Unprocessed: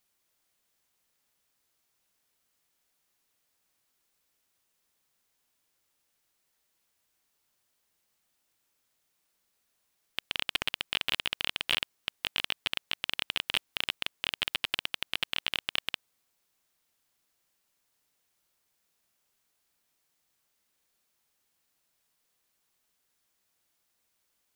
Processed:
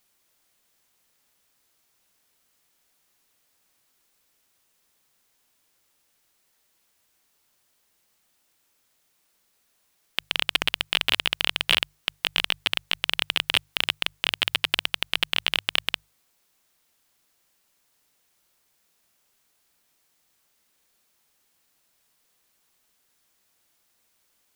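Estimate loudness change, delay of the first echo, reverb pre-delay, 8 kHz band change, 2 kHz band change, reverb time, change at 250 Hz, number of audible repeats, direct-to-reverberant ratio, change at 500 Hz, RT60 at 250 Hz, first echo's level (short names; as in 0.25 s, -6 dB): +7.5 dB, none, none, +7.5 dB, +7.5 dB, none, +7.5 dB, none, none, +7.5 dB, none, none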